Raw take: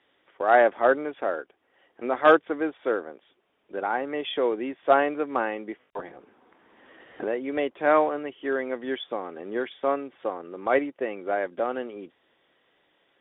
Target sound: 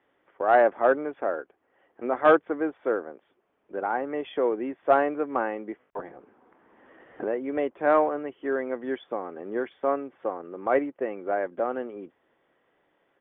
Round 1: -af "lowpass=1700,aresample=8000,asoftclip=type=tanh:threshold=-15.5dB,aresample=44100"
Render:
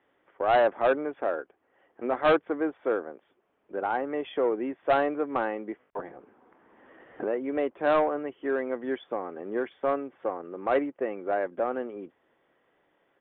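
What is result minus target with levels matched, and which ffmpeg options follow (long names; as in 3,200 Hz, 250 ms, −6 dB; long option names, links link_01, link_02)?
soft clipping: distortion +14 dB
-af "lowpass=1700,aresample=8000,asoftclip=type=tanh:threshold=-5.5dB,aresample=44100"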